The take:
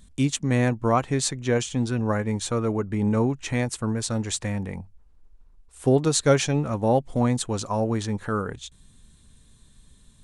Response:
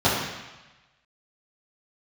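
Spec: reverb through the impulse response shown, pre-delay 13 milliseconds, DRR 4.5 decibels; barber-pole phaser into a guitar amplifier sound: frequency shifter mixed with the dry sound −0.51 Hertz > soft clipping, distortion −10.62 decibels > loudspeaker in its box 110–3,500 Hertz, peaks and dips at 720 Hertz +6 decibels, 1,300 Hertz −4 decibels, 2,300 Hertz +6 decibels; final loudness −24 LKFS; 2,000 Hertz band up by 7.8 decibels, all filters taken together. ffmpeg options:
-filter_complex "[0:a]equalizer=frequency=2000:width_type=o:gain=7,asplit=2[link_01][link_02];[1:a]atrim=start_sample=2205,adelay=13[link_03];[link_02][link_03]afir=irnorm=-1:irlink=0,volume=-24dB[link_04];[link_01][link_04]amix=inputs=2:normalize=0,asplit=2[link_05][link_06];[link_06]afreqshift=-0.51[link_07];[link_05][link_07]amix=inputs=2:normalize=1,asoftclip=threshold=-20.5dB,highpass=110,equalizer=frequency=720:width_type=q:width=4:gain=6,equalizer=frequency=1300:width_type=q:width=4:gain=-4,equalizer=frequency=2300:width_type=q:width=4:gain=6,lowpass=frequency=3500:width=0.5412,lowpass=frequency=3500:width=1.3066,volume=4dB"

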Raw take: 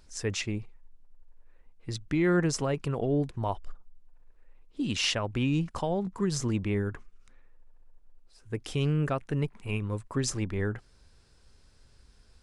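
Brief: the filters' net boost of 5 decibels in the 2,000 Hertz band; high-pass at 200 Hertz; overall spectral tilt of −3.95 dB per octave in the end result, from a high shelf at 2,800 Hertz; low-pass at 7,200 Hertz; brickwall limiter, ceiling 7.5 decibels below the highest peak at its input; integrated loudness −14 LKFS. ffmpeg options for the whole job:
ffmpeg -i in.wav -af "highpass=200,lowpass=7200,equalizer=frequency=2000:width_type=o:gain=4,highshelf=frequency=2800:gain=5.5,volume=18.5dB,alimiter=limit=-1dB:level=0:latency=1" out.wav

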